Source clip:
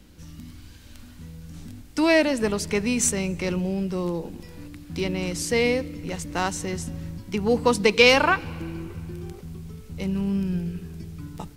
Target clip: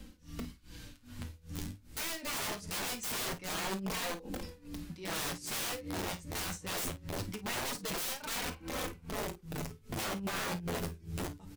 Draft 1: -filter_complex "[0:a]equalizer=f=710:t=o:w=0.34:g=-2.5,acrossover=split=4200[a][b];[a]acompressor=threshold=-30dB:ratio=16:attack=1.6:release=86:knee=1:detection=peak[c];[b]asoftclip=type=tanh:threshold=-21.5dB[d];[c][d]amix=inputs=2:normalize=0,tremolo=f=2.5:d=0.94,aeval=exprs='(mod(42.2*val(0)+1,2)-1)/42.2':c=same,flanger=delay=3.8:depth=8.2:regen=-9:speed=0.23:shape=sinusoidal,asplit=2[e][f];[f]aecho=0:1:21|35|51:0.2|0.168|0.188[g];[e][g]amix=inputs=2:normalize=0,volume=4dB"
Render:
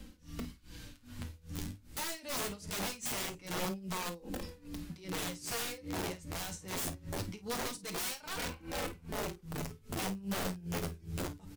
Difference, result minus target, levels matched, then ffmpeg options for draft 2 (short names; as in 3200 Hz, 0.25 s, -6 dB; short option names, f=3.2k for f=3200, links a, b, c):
compressor: peak gain reduction +8 dB; soft clip: distortion +11 dB
-filter_complex "[0:a]equalizer=f=710:t=o:w=0.34:g=-2.5,acrossover=split=4200[a][b];[a]acompressor=threshold=-21.5dB:ratio=16:attack=1.6:release=86:knee=1:detection=peak[c];[b]asoftclip=type=tanh:threshold=-13.5dB[d];[c][d]amix=inputs=2:normalize=0,tremolo=f=2.5:d=0.94,aeval=exprs='(mod(42.2*val(0)+1,2)-1)/42.2':c=same,flanger=delay=3.8:depth=8.2:regen=-9:speed=0.23:shape=sinusoidal,asplit=2[e][f];[f]aecho=0:1:21|35|51:0.2|0.168|0.188[g];[e][g]amix=inputs=2:normalize=0,volume=4dB"